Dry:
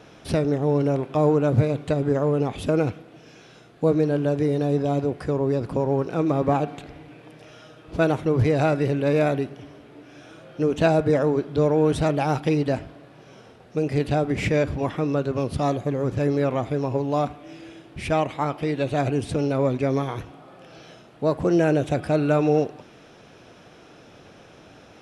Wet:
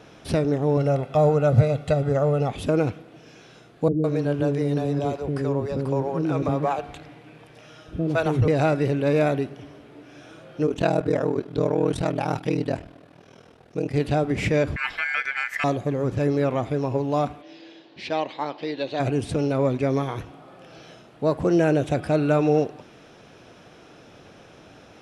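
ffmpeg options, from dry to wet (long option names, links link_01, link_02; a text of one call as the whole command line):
ffmpeg -i in.wav -filter_complex "[0:a]asettb=1/sr,asplit=3[link_01][link_02][link_03];[link_01]atrim=end=0.774[link_04];[link_02]atrim=start=0.77:end=2.51,asetpts=PTS-STARTPTS,afade=type=in:duration=0.004:curve=qsin,afade=type=out:start_time=1.736:duration=0.004:curve=qsin,aecho=1:1:1.5:0.65,atrim=end_sample=76734[link_05];[link_03]atrim=start=2.506[link_06];[link_04][link_05]acrossfade=duration=0.004:curve1=hsin:curve2=qsin[link_07];[link_07][link_06]acrossfade=duration=0.004:curve1=qsin:curve2=hsin,asettb=1/sr,asplit=3[link_08][link_09][link_10];[link_08]atrim=end=3.884[link_11];[link_09]atrim=start=3.88:end=8.48,asetpts=PTS-STARTPTS,afade=type=in:duration=0.004:curve=qsin,afade=type=out:start_time=4.596:duration=0.004:curve=qsin,acrossover=split=430[link_12][link_13];[link_13]adelay=160[link_14];[link_12][link_14]amix=inputs=2:normalize=0,atrim=end_sample=202860[link_15];[link_10]atrim=start=8.476[link_16];[link_11][link_15]acrossfade=duration=0.004:curve1=hsin:curve2=qsin[link_17];[link_17][link_16]acrossfade=duration=0.004:curve1=qsin:curve2=hsin,asplit=3[link_18][link_19][link_20];[link_18]afade=type=out:start_time=10.66:duration=0.02[link_21];[link_19]aeval=exprs='val(0)*sin(2*PI*20*n/s)':channel_layout=same,afade=type=in:start_time=10.66:duration=0.02,afade=type=out:start_time=13.92:duration=0.02[link_22];[link_20]afade=type=in:start_time=13.92:duration=0.02[link_23];[link_21][link_22][link_23]amix=inputs=3:normalize=0,asettb=1/sr,asplit=3[link_24][link_25][link_26];[link_24]atrim=end=14.764[link_27];[link_25]atrim=start=14.76:end=15.64,asetpts=PTS-STARTPTS,afade=type=in:duration=0.004:curve=qsin,afade=type=out:start_time=0.876:duration=0.004:curve=qsin,aeval=exprs='val(0)*sin(2*PI*1900*n/s)':channel_layout=same[link_28];[link_26]atrim=start=15.636[link_29];[link_27][link_28]acrossfade=duration=0.004:curve1=hsin:curve2=qsin[link_30];[link_30][link_29]acrossfade=duration=0.004:curve1=qsin:curve2=hsin,asplit=3[link_31][link_32][link_33];[link_31]afade=type=out:start_time=17.41:duration=0.02[link_34];[link_32]highpass=330,equalizer=frequency=410:width_type=q:width=4:gain=-3,equalizer=frequency=680:width_type=q:width=4:gain=-4,equalizer=frequency=1300:width_type=q:width=4:gain=-9,equalizer=frequency=2300:width_type=q:width=4:gain=-4,equalizer=frequency=4200:width_type=q:width=4:gain=8,lowpass=frequency=5400:width=0.5412,lowpass=frequency=5400:width=1.3066,afade=type=in:start_time=17.41:duration=0.02,afade=type=out:start_time=18.99:duration=0.02[link_35];[link_33]afade=type=in:start_time=18.99:duration=0.02[link_36];[link_34][link_35][link_36]amix=inputs=3:normalize=0" out.wav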